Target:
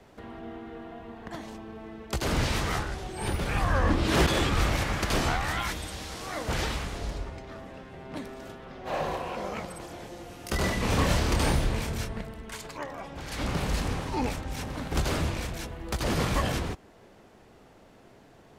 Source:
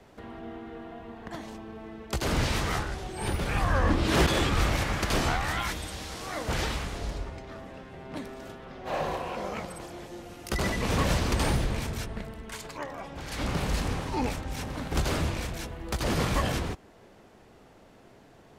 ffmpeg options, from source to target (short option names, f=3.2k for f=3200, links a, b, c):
-filter_complex "[0:a]asettb=1/sr,asplit=3[a][b][c];[a]atrim=end=9.864[d];[b]atrim=start=9.86:end=12.21,asetpts=PTS-STARTPTS,afade=t=in:d=0.004:c=qsin,afade=t=out:st=2.346:d=0.004:c=qsin,asplit=2[e][f];[f]adelay=27,volume=-5dB[g];[e][g]amix=inputs=2:normalize=0,atrim=end_sample=103635[h];[c]atrim=start=12.206[i];[d][h]acrossfade=d=0.004:c1=hsin:c2=qsin[j];[j][i]acrossfade=d=0.004:c1=qsin:c2=hsin"